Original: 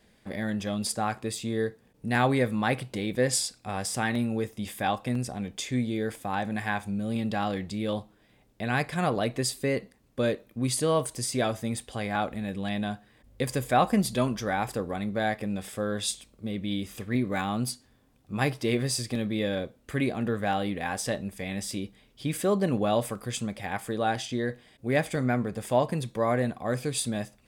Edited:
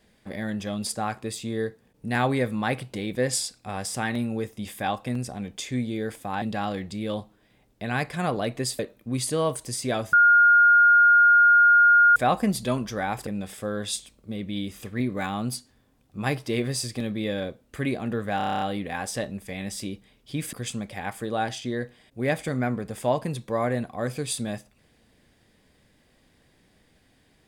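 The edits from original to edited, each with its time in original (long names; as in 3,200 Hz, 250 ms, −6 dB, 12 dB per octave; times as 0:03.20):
0:06.42–0:07.21: remove
0:09.58–0:10.29: remove
0:11.63–0:13.66: beep over 1,420 Hz −12.5 dBFS
0:14.77–0:15.42: remove
0:20.52: stutter 0.03 s, 9 plays
0:22.44–0:23.20: remove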